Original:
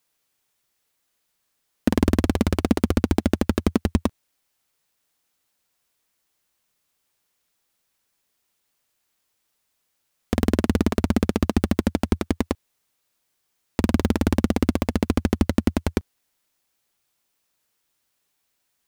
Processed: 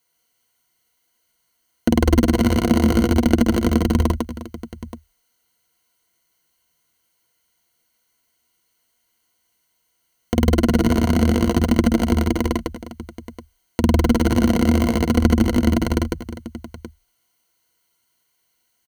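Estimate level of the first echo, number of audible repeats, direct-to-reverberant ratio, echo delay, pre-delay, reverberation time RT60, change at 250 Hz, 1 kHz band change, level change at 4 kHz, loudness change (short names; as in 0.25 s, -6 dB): -6.0 dB, 4, none, 50 ms, none, none, +5.0 dB, +5.0 dB, +5.5 dB, +4.5 dB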